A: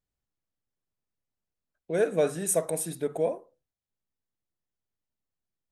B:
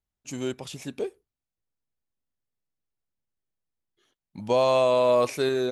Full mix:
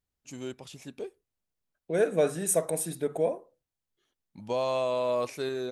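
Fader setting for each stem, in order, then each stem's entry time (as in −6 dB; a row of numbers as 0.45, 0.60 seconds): 0.0, −7.5 decibels; 0.00, 0.00 seconds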